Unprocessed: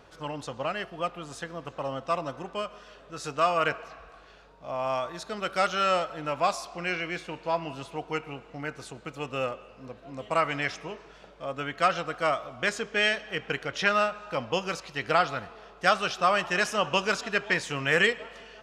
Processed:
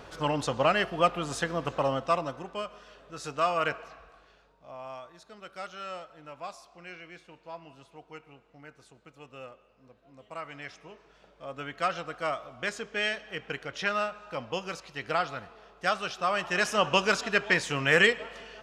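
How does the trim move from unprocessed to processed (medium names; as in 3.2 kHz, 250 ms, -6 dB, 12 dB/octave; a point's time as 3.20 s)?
1.74 s +7 dB
2.45 s -2.5 dB
3.85 s -2.5 dB
5.10 s -14.5 dB
10.36 s -14.5 dB
11.61 s -5 dB
16.26 s -5 dB
16.80 s +1.5 dB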